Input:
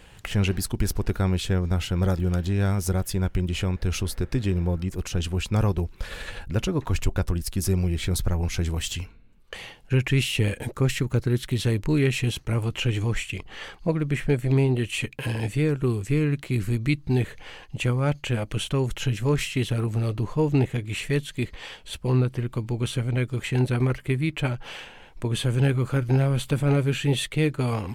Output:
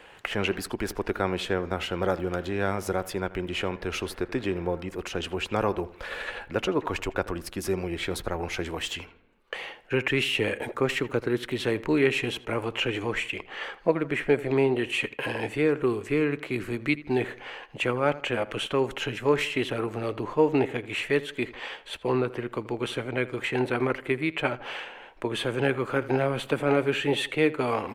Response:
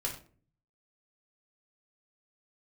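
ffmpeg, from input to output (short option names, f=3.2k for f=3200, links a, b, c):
-filter_complex "[0:a]acrossover=split=300 3000:gain=0.1 1 0.224[a][b][c];[a][b][c]amix=inputs=3:normalize=0,asplit=2[d][e];[e]adelay=81,lowpass=f=2.8k:p=1,volume=-17dB,asplit=2[f][g];[g]adelay=81,lowpass=f=2.8k:p=1,volume=0.44,asplit=2[h][i];[i]adelay=81,lowpass=f=2.8k:p=1,volume=0.44,asplit=2[j][k];[k]adelay=81,lowpass=f=2.8k:p=1,volume=0.44[l];[d][f][h][j][l]amix=inputs=5:normalize=0,volume=5dB"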